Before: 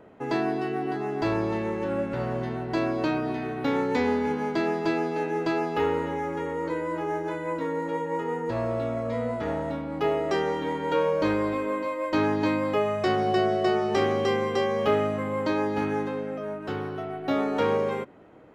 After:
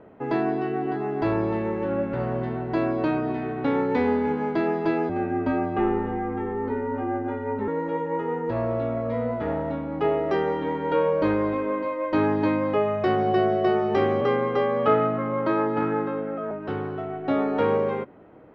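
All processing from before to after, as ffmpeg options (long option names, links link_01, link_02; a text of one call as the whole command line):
ffmpeg -i in.wav -filter_complex "[0:a]asettb=1/sr,asplit=3[link_01][link_02][link_03];[link_01]atrim=end=5.094[link_04];[link_02]atrim=start=5.09:end=7.68,asetpts=PTS-STARTPTS,afade=type=in:duration=0.004:curve=qsin,afade=type=out:start_time=2.586:duration=0.004:curve=qsin,equalizer=frequency=4700:width=0.95:gain=-9,afreqshift=-65[link_05];[link_03]atrim=start=7.676[link_06];[link_04][link_05]acrossfade=duration=0.004:curve1=hsin:curve2=qsin[link_07];[link_07][link_06]acrossfade=duration=0.004:curve1=qsin:curve2=hsin,asettb=1/sr,asplit=3[link_08][link_09][link_10];[link_08]atrim=end=14.214[link_11];[link_09]atrim=start=14.21:end=16.51,asetpts=PTS-STARTPTS,afade=type=in:duration=0.004:curve=qsin,afade=type=out:start_time=2.296:duration=0.004:curve=qsin,equalizer=frequency=1300:width=5:gain=9,adynamicsmooth=sensitivity=3:basefreq=4400,afreqshift=19[link_12];[link_10]atrim=start=16.506[link_13];[link_11][link_12]acrossfade=duration=0.004:curve1=hsin:curve2=qsin[link_14];[link_14][link_13]acrossfade=duration=0.004:curve1=qsin:curve2=hsin,lowpass=3700,highshelf=frequency=2400:gain=-8,volume=2.5dB" out.wav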